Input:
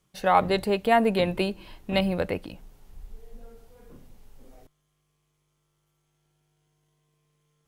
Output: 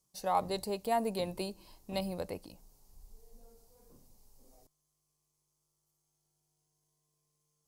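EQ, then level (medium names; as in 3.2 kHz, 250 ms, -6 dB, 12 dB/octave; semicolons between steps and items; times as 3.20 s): tilt shelf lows -6.5 dB, about 1.4 kHz; high-order bell 2.2 kHz -13.5 dB; -6.0 dB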